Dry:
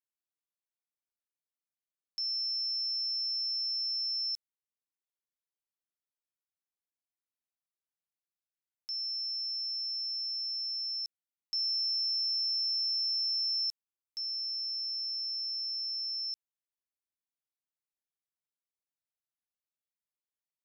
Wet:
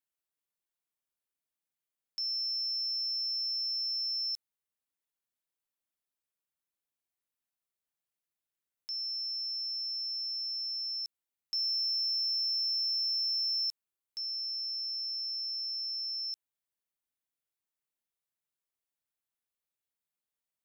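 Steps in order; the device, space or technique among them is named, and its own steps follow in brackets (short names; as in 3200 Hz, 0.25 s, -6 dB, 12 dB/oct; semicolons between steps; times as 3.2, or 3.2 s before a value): exciter from parts (in parallel at -9 dB: HPF 4900 Hz 24 dB/oct + soft clip -35.5 dBFS, distortion -15 dB); on the sum: gain +1.5 dB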